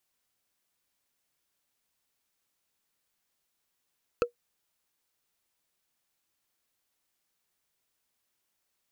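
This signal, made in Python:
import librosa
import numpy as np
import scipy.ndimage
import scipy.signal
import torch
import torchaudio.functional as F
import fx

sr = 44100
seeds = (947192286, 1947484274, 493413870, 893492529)

y = fx.strike_wood(sr, length_s=0.45, level_db=-17, body='bar', hz=480.0, decay_s=0.11, tilt_db=4.5, modes=5)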